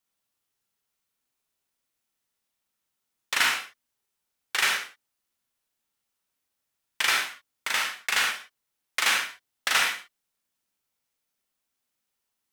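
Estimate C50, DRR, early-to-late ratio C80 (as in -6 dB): 4.0 dB, 1.0 dB, 9.0 dB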